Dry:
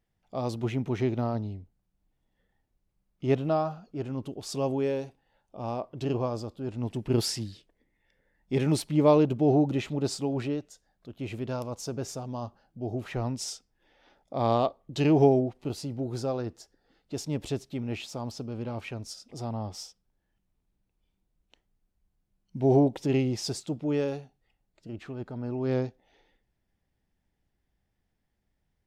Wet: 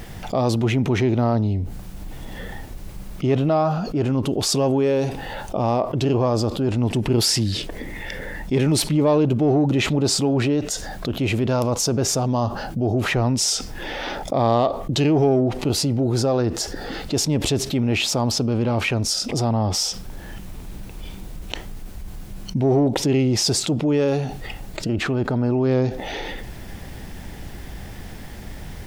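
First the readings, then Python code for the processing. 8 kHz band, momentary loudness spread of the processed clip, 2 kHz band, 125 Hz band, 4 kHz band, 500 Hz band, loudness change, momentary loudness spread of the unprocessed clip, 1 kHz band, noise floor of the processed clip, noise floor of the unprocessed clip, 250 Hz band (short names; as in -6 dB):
+16.5 dB, 19 LU, +14.5 dB, +10.0 dB, +15.5 dB, +7.0 dB, +8.5 dB, 16 LU, +8.5 dB, -36 dBFS, -78 dBFS, +8.0 dB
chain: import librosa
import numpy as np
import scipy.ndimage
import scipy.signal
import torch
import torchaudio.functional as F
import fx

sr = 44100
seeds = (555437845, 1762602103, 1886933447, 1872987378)

p1 = 10.0 ** (-23.5 / 20.0) * np.tanh(x / 10.0 ** (-23.5 / 20.0))
p2 = x + F.gain(torch.from_numpy(p1), -10.5).numpy()
y = fx.env_flatten(p2, sr, amount_pct=70)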